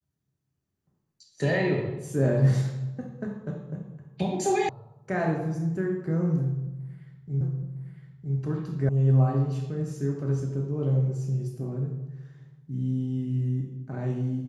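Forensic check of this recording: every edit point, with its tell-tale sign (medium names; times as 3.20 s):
4.69 s: sound stops dead
7.41 s: repeat of the last 0.96 s
8.89 s: sound stops dead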